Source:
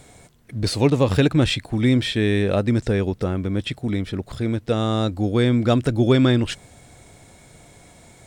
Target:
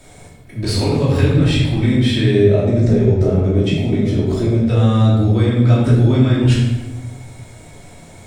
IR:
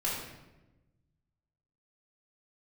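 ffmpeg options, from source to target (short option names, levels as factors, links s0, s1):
-filter_complex "[0:a]asettb=1/sr,asplit=3[s0][s1][s2];[s0]atrim=end=2.344[s3];[s1]atrim=start=2.34:end=4.61,asetpts=PTS-STARTPTS,afade=t=in:d=0.004:c=qsin,afade=t=out:st=2.266:d=0.004:c=qsin,equalizer=f=160:t=o:w=0.33:g=10,equalizer=f=250:t=o:w=0.33:g=6,equalizer=f=400:t=o:w=0.33:g=12,equalizer=f=630:t=o:w=0.33:g=11,equalizer=f=1600:t=o:w=0.33:g=-4,equalizer=f=6300:t=o:w=0.33:g=9[s4];[s2]atrim=start=4.606[s5];[s3][s4]acrossfade=d=0.004:c1=hsin:c2=qsin[s6];[s6][s5]acrossfade=d=0.004:c1=qsin:c2=hsin,acrossover=split=140[s7][s8];[s8]acompressor=threshold=0.0794:ratio=6[s9];[s7][s9]amix=inputs=2:normalize=0[s10];[1:a]atrim=start_sample=2205,asetrate=40572,aresample=44100[s11];[s10][s11]afir=irnorm=-1:irlink=0"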